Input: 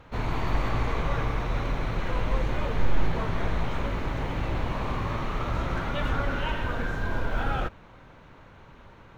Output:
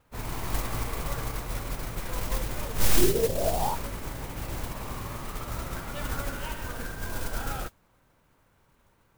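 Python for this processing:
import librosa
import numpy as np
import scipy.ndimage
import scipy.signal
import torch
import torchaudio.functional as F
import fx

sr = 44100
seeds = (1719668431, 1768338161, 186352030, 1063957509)

y = fx.lowpass_res(x, sr, hz=fx.line((2.97, 330.0), (3.74, 920.0)), q=9.7, at=(2.97, 3.74), fade=0.02)
y = fx.mod_noise(y, sr, seeds[0], snr_db=11)
y = fx.upward_expand(y, sr, threshold_db=-44.0, expansion=1.5)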